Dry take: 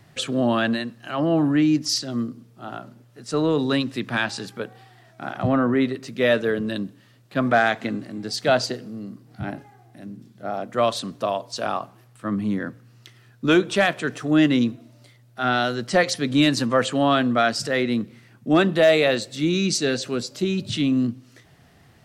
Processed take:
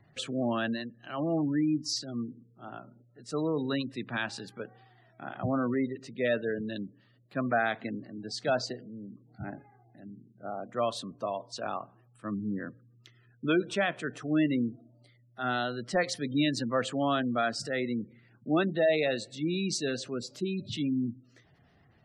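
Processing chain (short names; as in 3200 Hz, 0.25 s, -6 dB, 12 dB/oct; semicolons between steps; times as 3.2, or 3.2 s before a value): spectral gate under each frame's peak -25 dB strong; gain -9 dB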